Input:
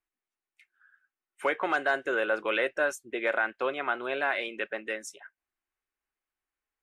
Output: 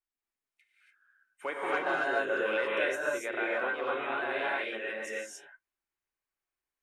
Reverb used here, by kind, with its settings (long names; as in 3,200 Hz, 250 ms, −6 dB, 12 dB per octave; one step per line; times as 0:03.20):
reverb whose tail is shaped and stops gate 310 ms rising, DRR −5.5 dB
level −8.5 dB